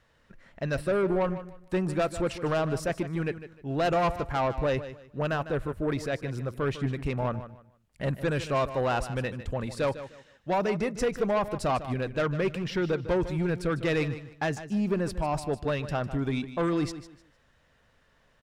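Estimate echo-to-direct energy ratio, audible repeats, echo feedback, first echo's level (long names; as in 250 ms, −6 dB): −12.5 dB, 2, 26%, −13.0 dB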